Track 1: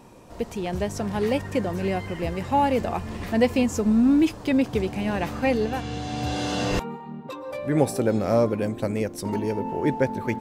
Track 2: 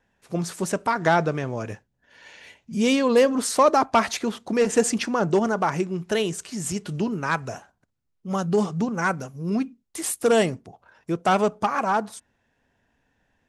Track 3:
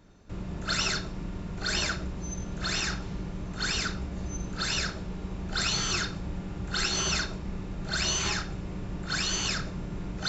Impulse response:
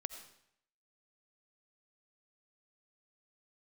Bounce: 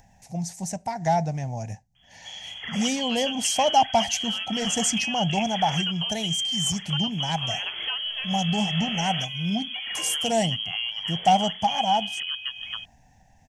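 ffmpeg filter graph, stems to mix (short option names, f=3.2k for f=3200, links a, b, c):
-filter_complex "[0:a]adelay=2450,volume=-1.5dB[a];[1:a]firequalizer=gain_entry='entry(160,0);entry(390,-22);entry(770,4);entry(1200,-28);entry(1900,-8);entry(3300,-13);entry(6000,3);entry(9200,-5)':delay=0.05:min_phase=1,acompressor=mode=upward:threshold=-41dB:ratio=2.5,volume=-0.5dB[b];[2:a]adelay=1950,volume=-8.5dB[c];[a][c]amix=inputs=2:normalize=0,lowpass=f=2.9k:t=q:w=0.5098,lowpass=f=2.9k:t=q:w=0.6013,lowpass=f=2.9k:t=q:w=0.9,lowpass=f=2.9k:t=q:w=2.563,afreqshift=-3400,acompressor=threshold=-31dB:ratio=6,volume=0dB[d];[b][d]amix=inputs=2:normalize=0,dynaudnorm=f=210:g=13:m=3.5dB"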